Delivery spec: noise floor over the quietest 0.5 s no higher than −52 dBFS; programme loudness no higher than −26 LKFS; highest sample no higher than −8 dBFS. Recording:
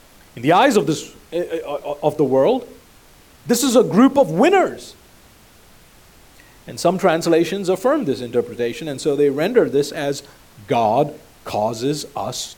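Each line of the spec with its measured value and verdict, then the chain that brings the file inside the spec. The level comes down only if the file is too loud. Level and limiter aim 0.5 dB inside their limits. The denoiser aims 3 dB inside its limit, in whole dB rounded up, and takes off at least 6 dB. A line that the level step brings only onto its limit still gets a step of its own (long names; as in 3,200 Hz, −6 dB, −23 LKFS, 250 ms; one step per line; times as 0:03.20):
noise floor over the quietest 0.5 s −48 dBFS: out of spec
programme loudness −18.5 LKFS: out of spec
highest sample −3.0 dBFS: out of spec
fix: level −8 dB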